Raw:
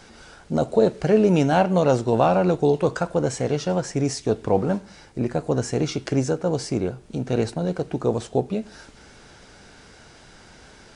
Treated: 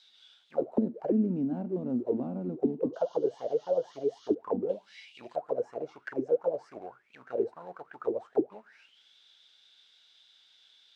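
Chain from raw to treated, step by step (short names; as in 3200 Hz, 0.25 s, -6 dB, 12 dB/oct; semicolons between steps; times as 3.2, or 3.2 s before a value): 2.93–4.35 painted sound noise 2800–6800 Hz -31 dBFS; 4.69–5.36 resonant high shelf 2200 Hz +14 dB, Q 3; in parallel at -5 dB: companded quantiser 4-bit; on the sum: auto-wah 240–3900 Hz, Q 12, down, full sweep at -11 dBFS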